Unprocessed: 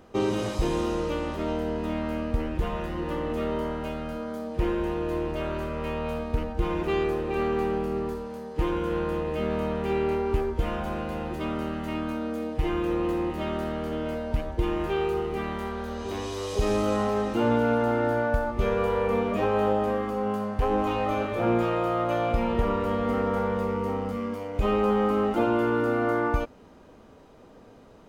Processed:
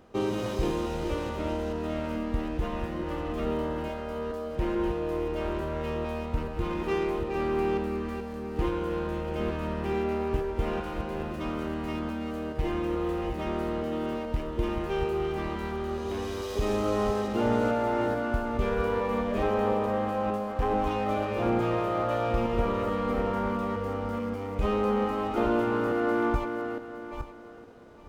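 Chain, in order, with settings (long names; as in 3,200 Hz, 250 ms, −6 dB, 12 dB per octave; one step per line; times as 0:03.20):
feedback delay that plays each chunk backwards 432 ms, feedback 41%, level −6 dB
windowed peak hold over 3 samples
level −3 dB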